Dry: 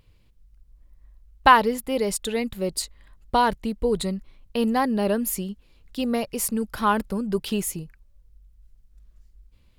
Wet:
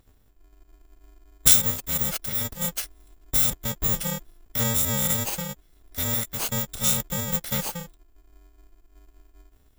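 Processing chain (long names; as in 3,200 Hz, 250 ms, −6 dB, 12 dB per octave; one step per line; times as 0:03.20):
samples in bit-reversed order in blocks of 128 samples
formants moved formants +5 semitones
level −1.5 dB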